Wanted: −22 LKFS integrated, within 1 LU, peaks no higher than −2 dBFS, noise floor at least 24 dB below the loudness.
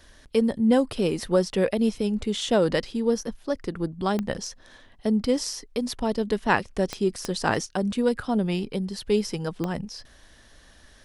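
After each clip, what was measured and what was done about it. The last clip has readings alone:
number of clicks 4; integrated loudness −26.0 LKFS; sample peak −7.0 dBFS; target loudness −22.0 LKFS
→ click removal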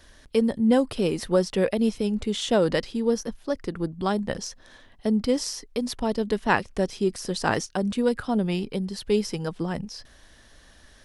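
number of clicks 0; integrated loudness −26.0 LKFS; sample peak −7.0 dBFS; target loudness −22.0 LKFS
→ level +4 dB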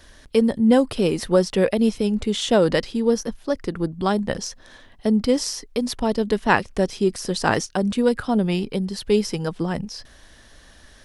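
integrated loudness −22.0 LKFS; sample peak −3.0 dBFS; background noise floor −50 dBFS

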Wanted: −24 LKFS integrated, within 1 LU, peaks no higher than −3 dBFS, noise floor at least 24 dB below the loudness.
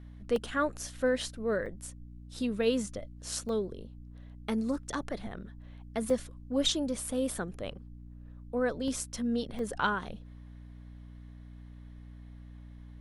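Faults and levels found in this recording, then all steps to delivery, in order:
number of dropouts 6; longest dropout 1.8 ms; mains hum 60 Hz; hum harmonics up to 300 Hz; level of the hum −45 dBFS; integrated loudness −33.0 LKFS; sample peak −16.0 dBFS; target loudness −24.0 LKFS
→ repair the gap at 0:00.36/0:01.66/0:03.49/0:06.10/0:08.88/0:09.59, 1.8 ms
hum removal 60 Hz, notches 5
level +9 dB

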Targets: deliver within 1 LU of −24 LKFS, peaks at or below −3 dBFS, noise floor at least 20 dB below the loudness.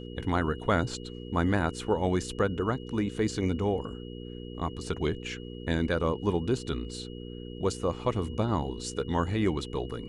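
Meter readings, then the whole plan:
mains hum 60 Hz; hum harmonics up to 480 Hz; level of the hum −38 dBFS; interfering tone 2,900 Hz; level of the tone −51 dBFS; integrated loudness −30.5 LKFS; sample peak −12.0 dBFS; target loudness −24.0 LKFS
→ hum removal 60 Hz, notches 8
notch filter 2,900 Hz, Q 30
level +6.5 dB

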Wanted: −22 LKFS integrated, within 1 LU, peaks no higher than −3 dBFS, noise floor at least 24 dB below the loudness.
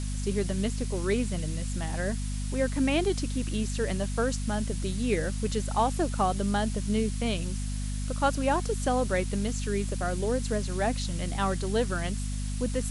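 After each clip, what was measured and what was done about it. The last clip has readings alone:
mains hum 50 Hz; hum harmonics up to 250 Hz; level of the hum −29 dBFS; background noise floor −32 dBFS; target noise floor −54 dBFS; integrated loudness −29.5 LKFS; sample peak −12.0 dBFS; target loudness −22.0 LKFS
→ hum removal 50 Hz, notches 5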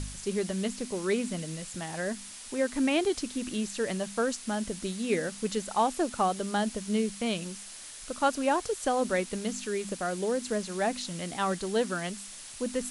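mains hum none found; background noise floor −45 dBFS; target noise floor −55 dBFS
→ noise reduction from a noise print 10 dB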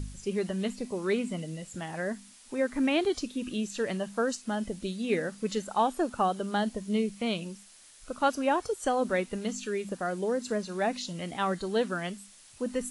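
background noise floor −55 dBFS; integrated loudness −31.0 LKFS; sample peak −13.0 dBFS; target loudness −22.0 LKFS
→ level +9 dB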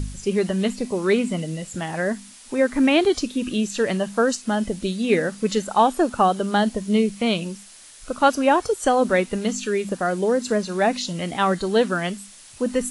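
integrated loudness −22.0 LKFS; sample peak −4.0 dBFS; background noise floor −46 dBFS

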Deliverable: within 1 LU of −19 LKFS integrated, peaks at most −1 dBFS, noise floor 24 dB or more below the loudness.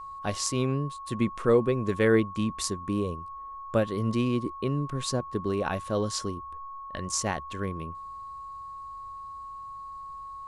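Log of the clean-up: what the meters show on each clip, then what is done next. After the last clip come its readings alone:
interfering tone 1,100 Hz; level of the tone −38 dBFS; integrated loudness −29.0 LKFS; sample peak −10.5 dBFS; target loudness −19.0 LKFS
→ notch filter 1,100 Hz, Q 30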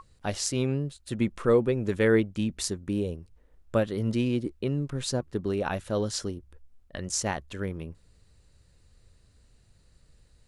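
interfering tone none found; integrated loudness −29.0 LKFS; sample peak −10.0 dBFS; target loudness −19.0 LKFS
→ level +10 dB
brickwall limiter −1 dBFS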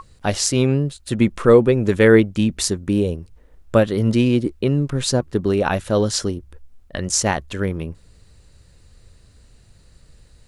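integrated loudness −19.0 LKFS; sample peak −1.0 dBFS; background noise floor −52 dBFS

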